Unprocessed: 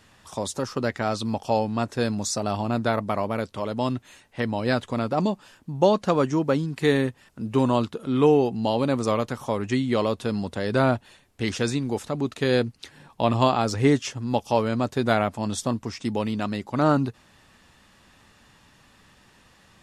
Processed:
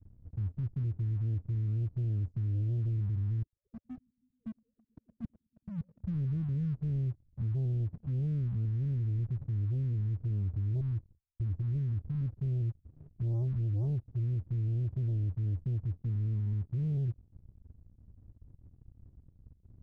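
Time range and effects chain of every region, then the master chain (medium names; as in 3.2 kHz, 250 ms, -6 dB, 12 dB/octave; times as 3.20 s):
3.42–6.03 s: formants replaced by sine waves + Gaussian low-pass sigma 15 samples + multi-head delay 108 ms, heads first and third, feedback 51%, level -20 dB
10.80–11.73 s: gate -53 dBFS, range -31 dB + compression, threshold -24 dBFS
whole clip: inverse Chebyshev low-pass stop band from 640 Hz, stop band 80 dB; waveshaping leveller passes 2; peak limiter -33.5 dBFS; trim +5.5 dB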